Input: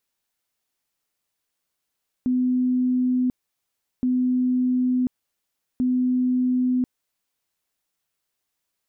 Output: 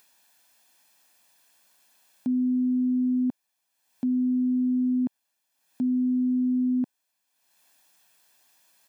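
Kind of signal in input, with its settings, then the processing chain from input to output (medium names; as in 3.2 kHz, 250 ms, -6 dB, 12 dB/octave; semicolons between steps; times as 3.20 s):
tone bursts 252 Hz, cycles 262, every 1.77 s, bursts 3, -18 dBFS
high-pass 240 Hz 12 dB/octave; comb 1.2 ms, depth 55%; upward compressor, threshold -49 dBFS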